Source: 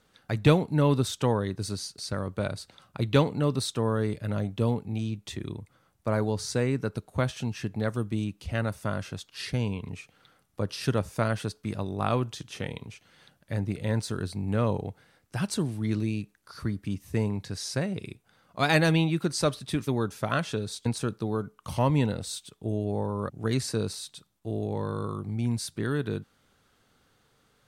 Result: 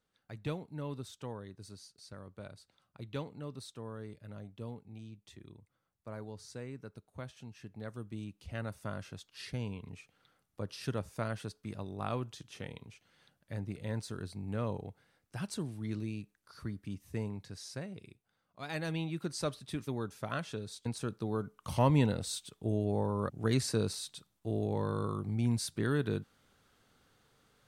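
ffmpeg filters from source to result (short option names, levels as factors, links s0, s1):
-af "volume=2.24,afade=t=in:st=7.53:d=1.3:silence=0.398107,afade=t=out:st=17.09:d=1.53:silence=0.334965,afade=t=in:st=18.62:d=0.66:silence=0.334965,afade=t=in:st=20.83:d=0.99:silence=0.446684"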